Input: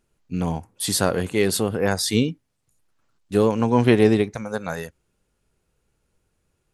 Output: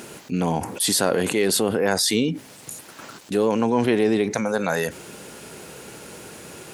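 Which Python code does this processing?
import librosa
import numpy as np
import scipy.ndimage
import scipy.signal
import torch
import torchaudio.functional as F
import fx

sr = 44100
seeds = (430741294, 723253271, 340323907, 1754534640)

y = scipy.signal.sosfilt(scipy.signal.butter(2, 210.0, 'highpass', fs=sr, output='sos'), x)
y = fx.peak_eq(y, sr, hz=1200.0, db=-3.5, octaves=0.22)
y = fx.env_flatten(y, sr, amount_pct=70)
y = y * 10.0 ** (-4.5 / 20.0)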